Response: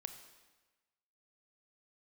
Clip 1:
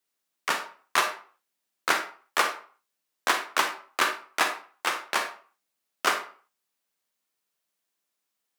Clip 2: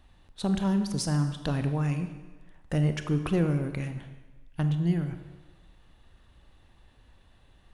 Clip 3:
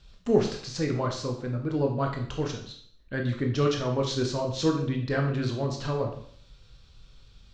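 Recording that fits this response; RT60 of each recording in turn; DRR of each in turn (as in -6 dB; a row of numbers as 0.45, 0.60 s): 2; 0.45, 1.2, 0.60 s; 6.0, 8.0, 2.0 dB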